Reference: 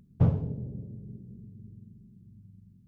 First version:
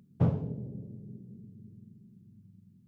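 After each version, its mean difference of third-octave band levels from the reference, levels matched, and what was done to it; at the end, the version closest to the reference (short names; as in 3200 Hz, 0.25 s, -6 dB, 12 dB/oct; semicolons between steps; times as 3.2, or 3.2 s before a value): 1.0 dB: HPF 130 Hz 12 dB/oct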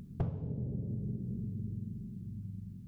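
5.5 dB: compressor 8:1, threshold -43 dBFS, peak gain reduction 24 dB; gain +10 dB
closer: first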